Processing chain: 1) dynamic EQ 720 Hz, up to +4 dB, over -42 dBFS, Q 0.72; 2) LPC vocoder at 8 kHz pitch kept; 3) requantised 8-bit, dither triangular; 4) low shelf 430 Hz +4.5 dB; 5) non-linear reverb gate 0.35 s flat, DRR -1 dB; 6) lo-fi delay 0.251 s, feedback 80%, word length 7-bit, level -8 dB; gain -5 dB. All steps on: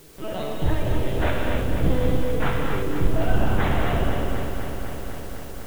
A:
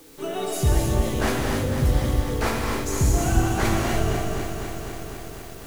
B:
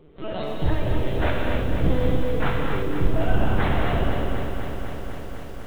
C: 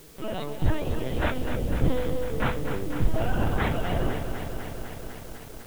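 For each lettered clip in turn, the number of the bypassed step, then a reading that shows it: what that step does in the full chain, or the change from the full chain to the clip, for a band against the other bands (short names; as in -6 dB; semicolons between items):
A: 2, 4 kHz band +2.5 dB; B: 3, distortion -22 dB; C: 5, crest factor change +2.0 dB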